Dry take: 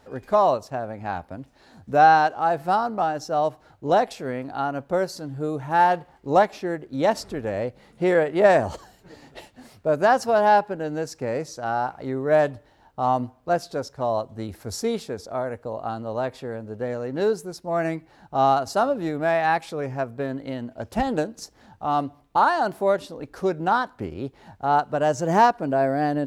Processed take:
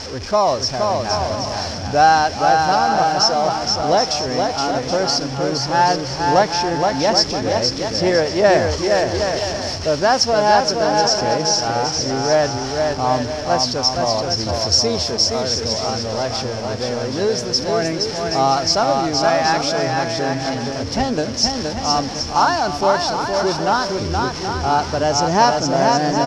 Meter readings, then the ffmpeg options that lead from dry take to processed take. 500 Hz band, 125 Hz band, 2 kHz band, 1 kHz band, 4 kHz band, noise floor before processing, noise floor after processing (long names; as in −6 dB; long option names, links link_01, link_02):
+5.0 dB, +8.0 dB, +5.5 dB, +4.5 dB, +21.0 dB, −57 dBFS, −27 dBFS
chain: -filter_complex "[0:a]aeval=exprs='val(0)+0.5*0.0282*sgn(val(0))':channel_layout=same,lowpass=frequency=5400:width_type=q:width=9.5,equalizer=frequency=81:width=4:gain=13,bandreject=frequency=3800:width=20,asplit=2[link_01][link_02];[link_02]aecho=0:1:470|775.5|974.1|1103|1187:0.631|0.398|0.251|0.158|0.1[link_03];[link_01][link_03]amix=inputs=2:normalize=0,volume=1.5dB"